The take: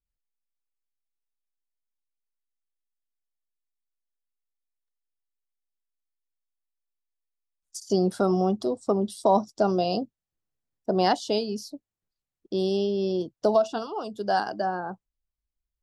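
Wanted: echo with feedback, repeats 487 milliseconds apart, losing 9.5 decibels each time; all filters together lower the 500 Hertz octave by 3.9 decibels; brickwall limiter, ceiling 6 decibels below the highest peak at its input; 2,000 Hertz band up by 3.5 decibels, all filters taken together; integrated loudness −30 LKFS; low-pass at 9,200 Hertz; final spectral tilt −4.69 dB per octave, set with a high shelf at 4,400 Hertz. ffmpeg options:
ffmpeg -i in.wav -af "lowpass=9200,equalizer=frequency=500:width_type=o:gain=-6,equalizer=frequency=2000:width_type=o:gain=6,highshelf=frequency=4400:gain=-3.5,alimiter=limit=-16dB:level=0:latency=1,aecho=1:1:487|974|1461|1948:0.335|0.111|0.0365|0.012" out.wav

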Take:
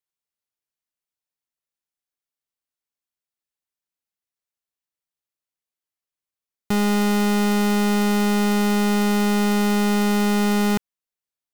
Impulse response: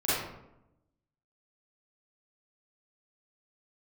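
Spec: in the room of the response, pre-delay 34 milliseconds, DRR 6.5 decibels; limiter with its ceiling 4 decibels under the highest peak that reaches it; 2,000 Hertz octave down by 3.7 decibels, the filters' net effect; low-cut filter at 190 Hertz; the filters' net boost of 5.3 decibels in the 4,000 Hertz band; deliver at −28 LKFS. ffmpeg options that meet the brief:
-filter_complex "[0:a]highpass=190,equalizer=frequency=2000:width_type=o:gain=-7.5,equalizer=frequency=4000:width_type=o:gain=9,alimiter=limit=-14dB:level=0:latency=1,asplit=2[link_01][link_02];[1:a]atrim=start_sample=2205,adelay=34[link_03];[link_02][link_03]afir=irnorm=-1:irlink=0,volume=-18dB[link_04];[link_01][link_04]amix=inputs=2:normalize=0,volume=-5dB"

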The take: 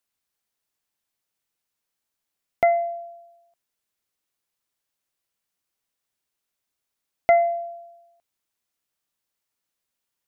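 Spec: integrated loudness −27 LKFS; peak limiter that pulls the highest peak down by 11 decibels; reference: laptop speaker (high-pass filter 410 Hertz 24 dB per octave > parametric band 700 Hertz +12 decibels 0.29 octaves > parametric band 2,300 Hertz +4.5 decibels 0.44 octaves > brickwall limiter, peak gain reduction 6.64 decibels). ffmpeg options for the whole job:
ffmpeg -i in.wav -af "alimiter=limit=-20dB:level=0:latency=1,highpass=frequency=410:width=0.5412,highpass=frequency=410:width=1.3066,equalizer=frequency=700:width_type=o:width=0.29:gain=12,equalizer=frequency=2300:width_type=o:width=0.44:gain=4.5,volume=-5.5dB,alimiter=limit=-20dB:level=0:latency=1" out.wav

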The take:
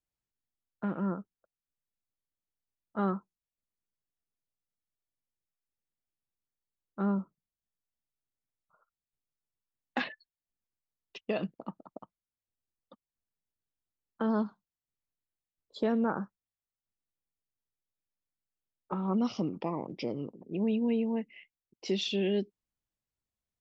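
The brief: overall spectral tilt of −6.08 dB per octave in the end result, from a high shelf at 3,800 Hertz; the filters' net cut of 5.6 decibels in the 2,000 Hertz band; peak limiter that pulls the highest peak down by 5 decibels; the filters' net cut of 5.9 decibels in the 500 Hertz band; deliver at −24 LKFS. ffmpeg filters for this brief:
ffmpeg -i in.wav -af "equalizer=frequency=500:width_type=o:gain=-7.5,equalizer=frequency=2000:width_type=o:gain=-5,highshelf=frequency=3800:gain=-8.5,volume=13.5dB,alimiter=limit=-14dB:level=0:latency=1" out.wav

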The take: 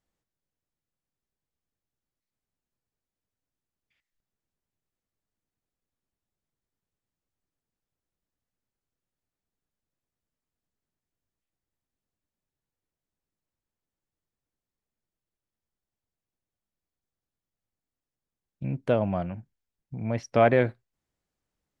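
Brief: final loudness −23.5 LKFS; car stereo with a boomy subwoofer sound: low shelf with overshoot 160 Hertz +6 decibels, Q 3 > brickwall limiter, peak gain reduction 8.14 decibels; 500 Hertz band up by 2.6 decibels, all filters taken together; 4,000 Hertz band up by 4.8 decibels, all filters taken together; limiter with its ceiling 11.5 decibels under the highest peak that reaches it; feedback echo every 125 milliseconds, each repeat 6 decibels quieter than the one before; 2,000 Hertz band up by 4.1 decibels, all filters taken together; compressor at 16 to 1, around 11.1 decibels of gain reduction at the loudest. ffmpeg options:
ffmpeg -i in.wav -af "equalizer=frequency=500:width_type=o:gain=3.5,equalizer=frequency=2000:width_type=o:gain=4,equalizer=frequency=4000:width_type=o:gain=5,acompressor=threshold=-23dB:ratio=16,alimiter=limit=-22.5dB:level=0:latency=1,lowshelf=frequency=160:width_type=q:width=3:gain=6,aecho=1:1:125|250|375|500|625|750:0.501|0.251|0.125|0.0626|0.0313|0.0157,volume=10.5dB,alimiter=limit=-14.5dB:level=0:latency=1" out.wav

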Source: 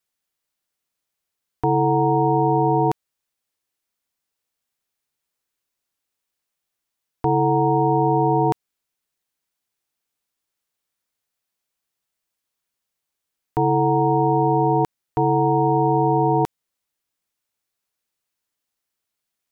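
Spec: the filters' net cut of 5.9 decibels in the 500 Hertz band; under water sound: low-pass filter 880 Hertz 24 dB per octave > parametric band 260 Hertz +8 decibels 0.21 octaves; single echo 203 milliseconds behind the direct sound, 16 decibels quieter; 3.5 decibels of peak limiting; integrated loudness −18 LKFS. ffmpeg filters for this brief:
ffmpeg -i in.wav -af "equalizer=frequency=500:width_type=o:gain=-8,alimiter=limit=-14.5dB:level=0:latency=1,lowpass=frequency=880:width=0.5412,lowpass=frequency=880:width=1.3066,equalizer=frequency=260:width_type=o:width=0.21:gain=8,aecho=1:1:203:0.158,volume=6dB" out.wav

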